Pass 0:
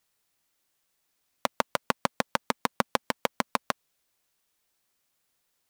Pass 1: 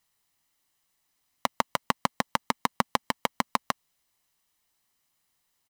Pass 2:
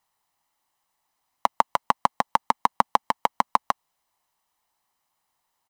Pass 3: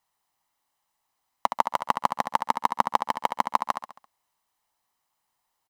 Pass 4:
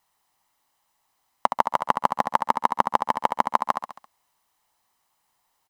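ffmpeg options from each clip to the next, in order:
ffmpeg -i in.wav -af "aecho=1:1:1:0.37" out.wav
ffmpeg -i in.wav -af "equalizer=frequency=880:width_type=o:width=1.1:gain=13,volume=-3.5dB" out.wav
ffmpeg -i in.wav -af "aecho=1:1:68|136|204|272|340:0.398|0.187|0.0879|0.0413|0.0194,volume=-2.5dB" out.wav
ffmpeg -i in.wav -filter_complex "[0:a]acrossover=split=1700|5400[link_01][link_02][link_03];[link_01]acompressor=threshold=-21dB:ratio=4[link_04];[link_02]acompressor=threshold=-45dB:ratio=4[link_05];[link_03]acompressor=threshold=-52dB:ratio=4[link_06];[link_04][link_05][link_06]amix=inputs=3:normalize=0,volume=6dB" out.wav

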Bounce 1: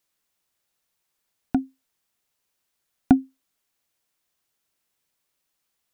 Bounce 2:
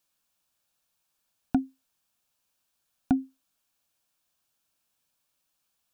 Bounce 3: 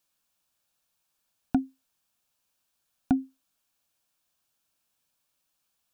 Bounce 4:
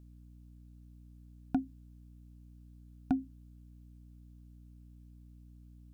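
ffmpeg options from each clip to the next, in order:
ffmpeg -i in.wav -af "equalizer=frequency=400:width=5.6:gain=-10,bandreject=frequency=2000:width=5.5,alimiter=limit=-14dB:level=0:latency=1:release=108" out.wav
ffmpeg -i in.wav -af anull out.wav
ffmpeg -i in.wav -af "aeval=exprs='val(0)+0.00447*(sin(2*PI*60*n/s)+sin(2*PI*2*60*n/s)/2+sin(2*PI*3*60*n/s)/3+sin(2*PI*4*60*n/s)/4+sin(2*PI*5*60*n/s)/5)':channel_layout=same,volume=-6dB" out.wav

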